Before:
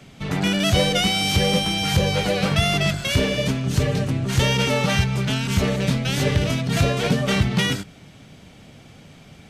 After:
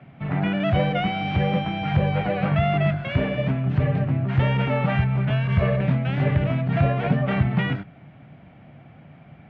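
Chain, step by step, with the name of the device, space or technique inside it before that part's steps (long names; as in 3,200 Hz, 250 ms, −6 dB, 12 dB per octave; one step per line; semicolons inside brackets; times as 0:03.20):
bass cabinet (loudspeaker in its box 64–2,300 Hz, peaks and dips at 140 Hz +6 dB, 440 Hz −6 dB, 700 Hz +6 dB)
0:05.30–0:05.81: comb filter 1.8 ms, depth 82%
level −2.5 dB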